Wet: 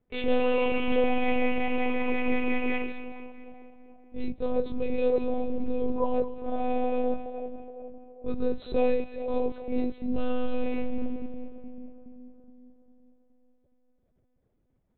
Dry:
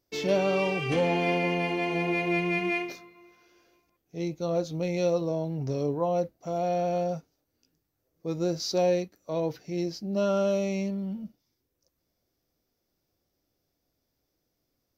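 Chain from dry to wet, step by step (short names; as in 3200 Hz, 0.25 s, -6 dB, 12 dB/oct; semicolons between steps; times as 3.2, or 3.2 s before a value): low shelf 150 Hz +12 dB; split-band echo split 850 Hz, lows 0.414 s, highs 0.219 s, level -11 dB; low-pass opened by the level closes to 1900 Hz, open at -23.5 dBFS; monotone LPC vocoder at 8 kHz 250 Hz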